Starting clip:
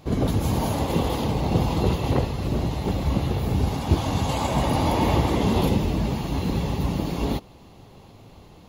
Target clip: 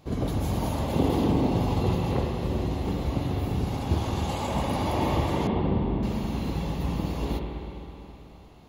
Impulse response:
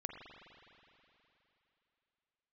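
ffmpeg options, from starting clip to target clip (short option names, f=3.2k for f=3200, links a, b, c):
-filter_complex "[0:a]asettb=1/sr,asplit=3[a][b][c];[a]atrim=end=0.994[d];[b]atrim=start=0.99:end=1.48,asetpts=PTS-STARTPTS,afade=t=in:d=0.004:c=qsin,afade=t=out:st=0.486:d=0.004:c=qsin,equalizer=f=290:w=0.86:g=10.5[e];[c]atrim=start=1.476[f];[d][e]acrossfade=d=0.004:c1=hsin:c2=qsin[g];[g][f]acrossfade=d=0.004:c1=qsin:c2=hsin,asettb=1/sr,asplit=3[h][i][j];[h]atrim=end=5.474[k];[i]atrim=start=5.47:end=6.03,asetpts=PTS-STARTPTS,afade=t=in:d=0.004:c=qsin,afade=t=out:st=0.556:d=0.004:c=qsin,lowpass=1.1k[l];[j]atrim=start=6.026[m];[k][l]acrossfade=d=0.004:c1=hsin:c2=qsin[n];[n][m]acrossfade=d=0.004:c1=qsin:c2=hsin[o];[1:a]atrim=start_sample=2205[p];[o][p]afir=irnorm=-1:irlink=0,volume=-2.5dB"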